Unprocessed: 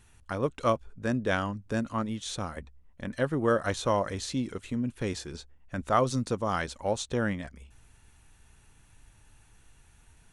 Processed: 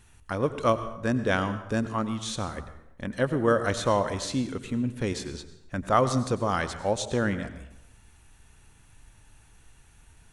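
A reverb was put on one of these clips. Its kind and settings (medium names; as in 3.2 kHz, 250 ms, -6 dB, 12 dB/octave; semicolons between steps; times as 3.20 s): plate-style reverb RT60 0.86 s, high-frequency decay 0.7×, pre-delay 80 ms, DRR 11.5 dB; trim +2.5 dB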